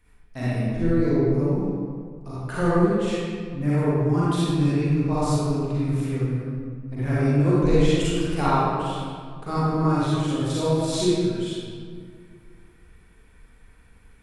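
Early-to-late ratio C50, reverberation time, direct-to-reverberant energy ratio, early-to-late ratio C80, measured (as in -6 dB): -6.5 dB, 2.0 s, -10.0 dB, -3.0 dB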